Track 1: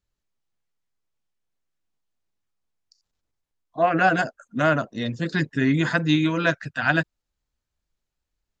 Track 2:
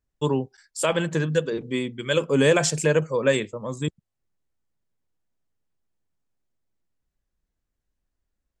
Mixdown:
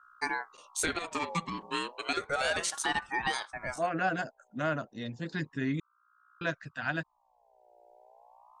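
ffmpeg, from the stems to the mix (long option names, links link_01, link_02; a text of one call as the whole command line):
ffmpeg -i stem1.wav -i stem2.wav -filter_complex "[0:a]volume=-11dB,asplit=3[link_01][link_02][link_03];[link_01]atrim=end=5.8,asetpts=PTS-STARTPTS,afade=type=out:start_time=5.796:duration=0.004:curve=hsin[link_04];[link_02]atrim=start=5.8:end=6.41,asetpts=PTS-STARTPTS,volume=0[link_05];[link_03]atrim=start=6.41,asetpts=PTS-STARTPTS,afade=type=in:duration=0.004:curve=hsin[link_06];[link_04][link_05][link_06]concat=n=3:v=0:a=1,asplit=2[link_07][link_08];[1:a]highpass=frequency=730:poles=1,aeval=exprs='val(0)+0.00141*(sin(2*PI*60*n/s)+sin(2*PI*2*60*n/s)/2+sin(2*PI*3*60*n/s)/3+sin(2*PI*4*60*n/s)/4+sin(2*PI*5*60*n/s)/5)':channel_layout=same,aeval=exprs='val(0)*sin(2*PI*1000*n/s+1000*0.35/0.32*sin(2*PI*0.32*n/s))':channel_layout=same,volume=2.5dB[link_09];[link_08]apad=whole_len=379260[link_10];[link_09][link_10]sidechaincompress=threshold=-45dB:ratio=8:attack=24:release=693[link_11];[link_07][link_11]amix=inputs=2:normalize=0,alimiter=limit=-18.5dB:level=0:latency=1:release=352" out.wav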